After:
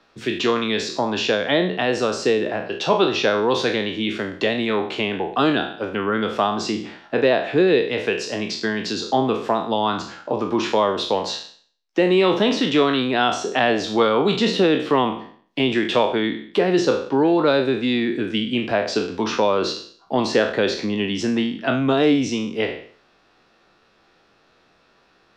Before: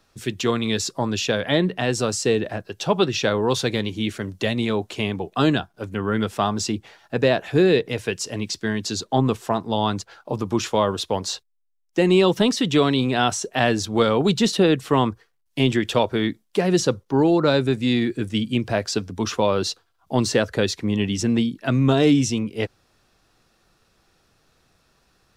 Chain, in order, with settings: spectral sustain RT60 0.48 s; in parallel at +2.5 dB: compression, threshold -25 dBFS, peak gain reduction 13 dB; on the sum: three-band isolator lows -14 dB, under 200 Hz, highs -23 dB, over 4.7 kHz; trim -2 dB

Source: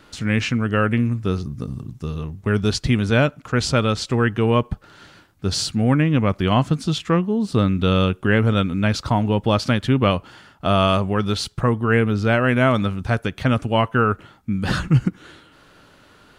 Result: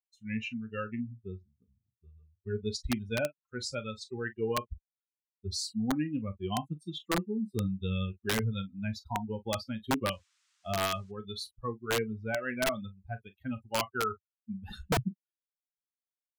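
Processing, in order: expander on every frequency bin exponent 3; on a send: early reflections 27 ms -15 dB, 41 ms -16 dB; 10.11–11.10 s: on the sum: band noise 1.1–8 kHz -68 dBFS; integer overflow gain 15 dB; trim -6.5 dB

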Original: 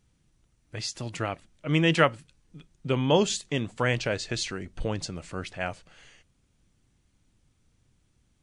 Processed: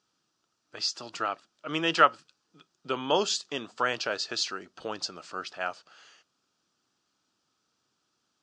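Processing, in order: cabinet simulation 410–6900 Hz, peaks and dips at 520 Hz -4 dB, 1.3 kHz +8 dB, 2.1 kHz -10 dB, 4.9 kHz +7 dB

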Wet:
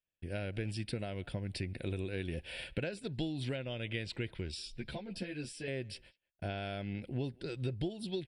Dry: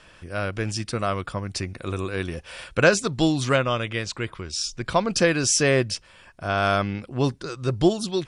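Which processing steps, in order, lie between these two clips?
gate -43 dBFS, range -41 dB; compression 16:1, threshold -29 dBFS, peak gain reduction 18.5 dB; static phaser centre 2.8 kHz, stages 4; speakerphone echo 190 ms, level -26 dB; 4.77–5.68 s: three-phase chorus; trim -2.5 dB

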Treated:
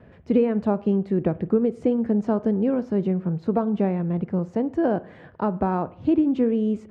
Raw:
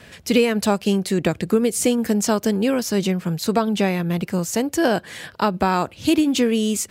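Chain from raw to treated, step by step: Bessel low-pass 710 Hz, order 2; on a send: reverberation RT60 0.55 s, pre-delay 43 ms, DRR 17 dB; on the sum: trim -1.5 dB

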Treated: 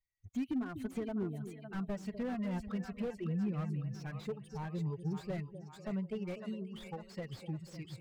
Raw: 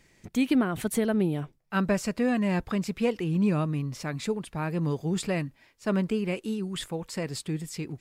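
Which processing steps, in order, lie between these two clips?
expander on every frequency bin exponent 2; treble shelf 8 kHz -8.5 dB; compression 2.5:1, threshold -38 dBFS, peak gain reduction 11.5 dB; two-band feedback delay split 570 Hz, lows 246 ms, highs 554 ms, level -11 dB; slew-rate limiter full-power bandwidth 7.4 Hz; trim +1 dB

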